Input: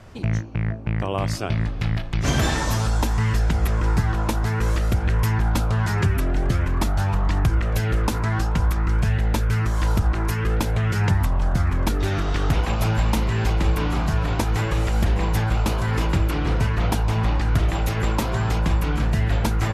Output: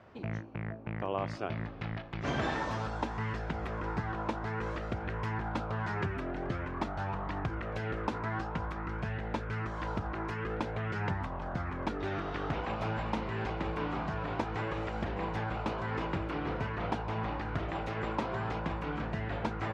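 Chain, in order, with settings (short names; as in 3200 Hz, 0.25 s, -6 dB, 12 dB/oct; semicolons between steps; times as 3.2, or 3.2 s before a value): HPF 440 Hz 6 dB/oct; tape spacing loss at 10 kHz 32 dB; gain -3 dB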